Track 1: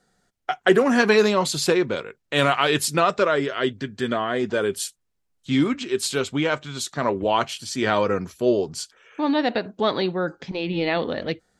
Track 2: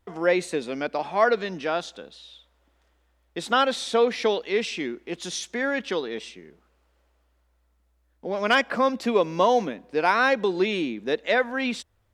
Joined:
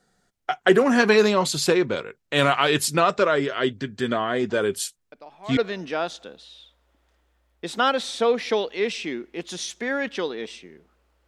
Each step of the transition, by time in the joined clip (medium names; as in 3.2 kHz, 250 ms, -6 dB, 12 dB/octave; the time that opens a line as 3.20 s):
track 1
5.12 s: add track 2 from 0.85 s 0.45 s -16.5 dB
5.57 s: go over to track 2 from 1.30 s